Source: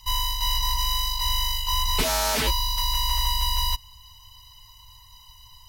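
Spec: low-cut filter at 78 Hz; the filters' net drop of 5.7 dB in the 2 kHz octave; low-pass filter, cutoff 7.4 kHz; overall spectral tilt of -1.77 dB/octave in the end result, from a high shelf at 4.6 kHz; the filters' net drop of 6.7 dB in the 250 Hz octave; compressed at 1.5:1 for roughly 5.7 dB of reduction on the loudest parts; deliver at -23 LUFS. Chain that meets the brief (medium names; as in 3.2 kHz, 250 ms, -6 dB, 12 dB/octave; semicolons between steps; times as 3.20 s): high-pass 78 Hz; low-pass 7.4 kHz; peaking EQ 250 Hz -8.5 dB; peaking EQ 2 kHz -8 dB; treble shelf 4.6 kHz +6 dB; compression 1.5:1, threshold -39 dBFS; trim +7 dB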